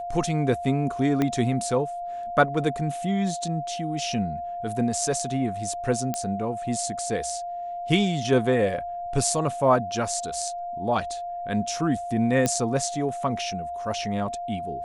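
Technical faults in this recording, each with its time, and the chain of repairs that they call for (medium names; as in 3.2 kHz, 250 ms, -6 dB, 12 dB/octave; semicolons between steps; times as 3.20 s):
whine 700 Hz -30 dBFS
1.22 s: pop -11 dBFS
6.14 s: pop -13 dBFS
12.46 s: pop -9 dBFS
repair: de-click; band-stop 700 Hz, Q 30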